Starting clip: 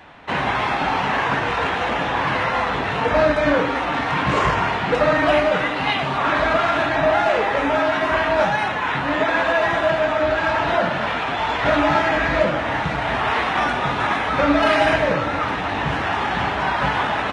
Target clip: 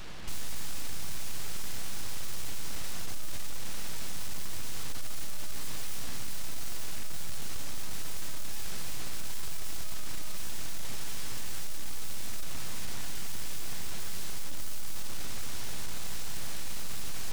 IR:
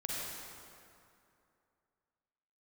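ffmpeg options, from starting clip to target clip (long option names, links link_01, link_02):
-af "aeval=exprs='(tanh(50.1*val(0)+0.05)-tanh(0.05))/50.1':channel_layout=same,aeval=exprs='abs(val(0))':channel_layout=same,bass=frequency=250:gain=11,treble=frequency=4000:gain=7"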